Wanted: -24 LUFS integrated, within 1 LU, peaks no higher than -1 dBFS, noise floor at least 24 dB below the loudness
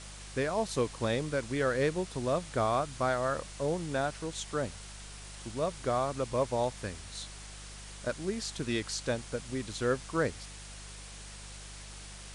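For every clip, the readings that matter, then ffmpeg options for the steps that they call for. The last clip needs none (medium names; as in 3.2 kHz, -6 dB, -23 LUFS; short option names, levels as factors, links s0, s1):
hum 50 Hz; highest harmonic 200 Hz; hum level -46 dBFS; noise floor -47 dBFS; noise floor target -57 dBFS; loudness -33.0 LUFS; peak level -16.5 dBFS; loudness target -24.0 LUFS
-> -af "bandreject=f=50:t=h:w=4,bandreject=f=100:t=h:w=4,bandreject=f=150:t=h:w=4,bandreject=f=200:t=h:w=4"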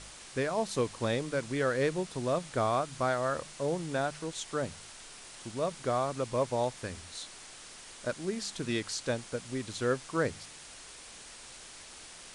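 hum not found; noise floor -50 dBFS; noise floor target -57 dBFS
-> -af "afftdn=nr=7:nf=-50"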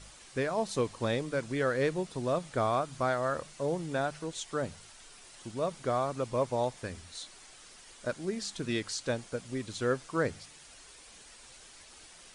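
noise floor -54 dBFS; noise floor target -57 dBFS
-> -af "afftdn=nr=6:nf=-54"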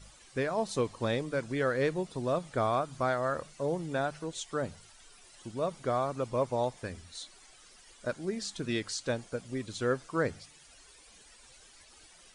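noise floor -57 dBFS; loudness -33.0 LUFS; peak level -17.0 dBFS; loudness target -24.0 LUFS
-> -af "volume=2.82"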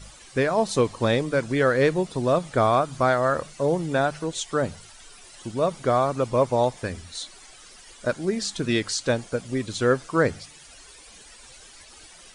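loudness -24.0 LUFS; peak level -8.0 dBFS; noise floor -48 dBFS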